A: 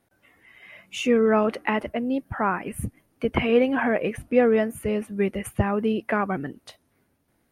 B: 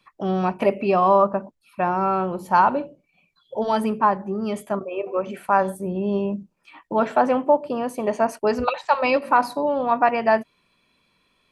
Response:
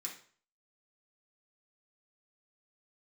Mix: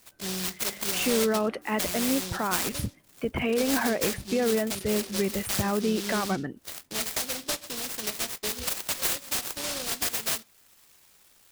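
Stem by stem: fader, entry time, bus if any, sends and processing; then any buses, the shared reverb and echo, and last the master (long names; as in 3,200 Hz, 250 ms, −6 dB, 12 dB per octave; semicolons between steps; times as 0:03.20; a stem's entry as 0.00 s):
−1.5 dB, 0.00 s, no send, brickwall limiter −17 dBFS, peak gain reduction 9.5 dB
−0.5 dB, 0.00 s, send −18 dB, octave-band graphic EQ 125/250/500/1,000/2,000/4,000/8,000 Hz −5/−11/−6/−11/+11/+6/+10 dB; downward compressor 3 to 1, threshold −28 dBFS, peak gain reduction 11 dB; short delay modulated by noise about 4,200 Hz, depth 0.37 ms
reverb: on, RT60 0.45 s, pre-delay 3 ms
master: no processing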